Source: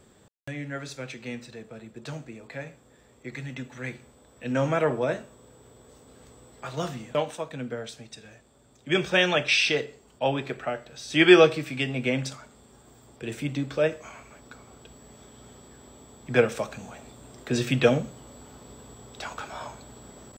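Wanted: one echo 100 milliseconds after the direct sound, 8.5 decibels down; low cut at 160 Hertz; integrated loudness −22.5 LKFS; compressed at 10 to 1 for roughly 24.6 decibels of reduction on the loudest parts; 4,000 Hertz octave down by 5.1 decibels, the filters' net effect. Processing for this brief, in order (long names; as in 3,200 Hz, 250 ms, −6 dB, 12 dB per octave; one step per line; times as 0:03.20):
high-pass filter 160 Hz
parametric band 4,000 Hz −7 dB
downward compressor 10 to 1, threshold −37 dBFS
single-tap delay 100 ms −8.5 dB
level +20.5 dB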